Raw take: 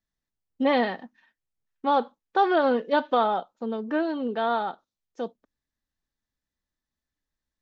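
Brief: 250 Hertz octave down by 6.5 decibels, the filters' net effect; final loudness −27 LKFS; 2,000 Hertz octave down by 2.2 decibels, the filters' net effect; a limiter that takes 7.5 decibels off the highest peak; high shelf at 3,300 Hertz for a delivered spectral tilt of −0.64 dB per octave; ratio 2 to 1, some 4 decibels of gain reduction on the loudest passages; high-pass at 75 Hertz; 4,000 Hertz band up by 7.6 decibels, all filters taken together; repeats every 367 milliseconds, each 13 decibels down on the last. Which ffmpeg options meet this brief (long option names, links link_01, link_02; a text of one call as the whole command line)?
ffmpeg -i in.wav -af "highpass=75,equalizer=frequency=250:width_type=o:gain=-8,equalizer=frequency=2000:width_type=o:gain=-6,highshelf=frequency=3300:gain=5.5,equalizer=frequency=4000:width_type=o:gain=8,acompressor=threshold=-25dB:ratio=2,alimiter=limit=-21dB:level=0:latency=1,aecho=1:1:367|734|1101:0.224|0.0493|0.0108,volume=5.5dB" out.wav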